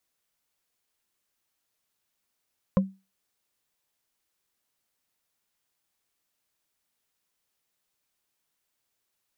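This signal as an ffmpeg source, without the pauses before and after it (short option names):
-f lavfi -i "aevalsrc='0.188*pow(10,-3*t/0.27)*sin(2*PI*192*t)+0.112*pow(10,-3*t/0.08)*sin(2*PI*529.3*t)+0.0668*pow(10,-3*t/0.036)*sin(2*PI*1037.6*t)':d=0.45:s=44100"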